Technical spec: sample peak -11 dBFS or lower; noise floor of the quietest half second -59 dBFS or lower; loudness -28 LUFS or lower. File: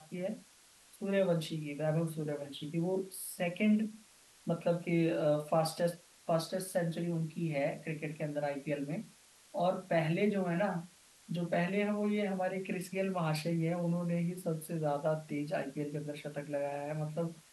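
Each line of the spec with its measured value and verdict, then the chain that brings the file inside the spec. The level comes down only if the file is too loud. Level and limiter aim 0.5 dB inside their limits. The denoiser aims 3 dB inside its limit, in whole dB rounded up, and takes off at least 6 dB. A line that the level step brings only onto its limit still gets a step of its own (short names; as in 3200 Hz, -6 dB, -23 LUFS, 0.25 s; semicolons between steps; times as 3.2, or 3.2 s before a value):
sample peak -18.0 dBFS: OK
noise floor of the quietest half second -62 dBFS: OK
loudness -35.0 LUFS: OK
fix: none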